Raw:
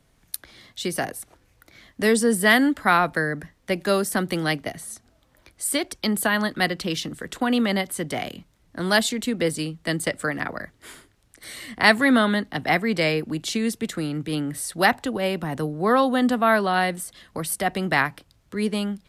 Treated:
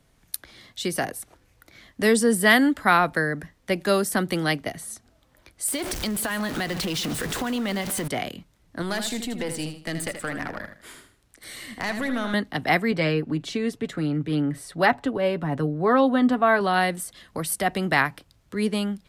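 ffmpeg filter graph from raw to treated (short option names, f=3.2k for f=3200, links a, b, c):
-filter_complex "[0:a]asettb=1/sr,asplit=3[a][b][c];[a]atrim=end=5.684[d];[b]atrim=start=5.68:end=8.08,asetpts=PTS-STARTPTS,afade=t=in:d=0.004:c=qsin,afade=t=out:st=2.396:d=0.004:c=qsin,aeval=exprs='val(0)+0.5*0.0501*sgn(val(0))':c=same,acompressor=threshold=-24dB:ratio=6:attack=3.2:release=140:knee=1:detection=peak,aecho=1:1:143:0.168,atrim=end_sample=105840[e];[c]atrim=start=8.076[f];[d][e]acrossfade=d=0.004:c1=hsin:c2=qsin[g];[g][f]acrossfade=d=0.004:c1=qsin:c2=hsin,asettb=1/sr,asplit=3[h][i][j];[h]atrim=end=8.824[k];[i]atrim=start=8.82:end=12.34,asetpts=PTS-STARTPTS,afade=t=in:d=0.004:c=qsin,afade=t=out:st=3.516:d=0.004:c=qsin,acompressor=threshold=-22dB:ratio=4:attack=3.2:release=140:knee=1:detection=peak,aeval=exprs='(tanh(10*val(0)+0.45)-tanh(0.45))/10':c=same,aecho=1:1:79|158|237:0.376|0.109|0.0316,atrim=end_sample=155232[l];[j]atrim=start=12.336[m];[k][l]acrossfade=d=0.004:c1=hsin:c2=qsin[n];[n][m]acrossfade=d=0.004:c1=qsin:c2=hsin,asettb=1/sr,asplit=3[o][p][q];[o]atrim=end=12.914[r];[p]atrim=start=12.91:end=16.61,asetpts=PTS-STARTPTS,afade=t=in:d=0.004:c=qsin,afade=t=out:st=3.696:d=0.004:c=qsin,lowpass=f=2k:p=1,aecho=1:1:7.1:0.48,atrim=end_sample=163170[s];[q]atrim=start=16.606[t];[r][s]acrossfade=d=0.004:c1=hsin:c2=qsin[u];[u][t]acrossfade=d=0.004:c1=qsin:c2=hsin"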